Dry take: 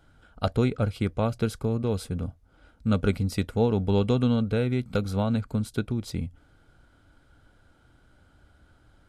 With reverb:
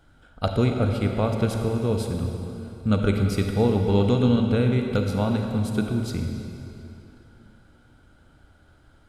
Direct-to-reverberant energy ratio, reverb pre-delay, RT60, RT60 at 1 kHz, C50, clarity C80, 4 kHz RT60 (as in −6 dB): 3.0 dB, 33 ms, 3.0 s, 3.0 s, 3.5 dB, 4.5 dB, 2.5 s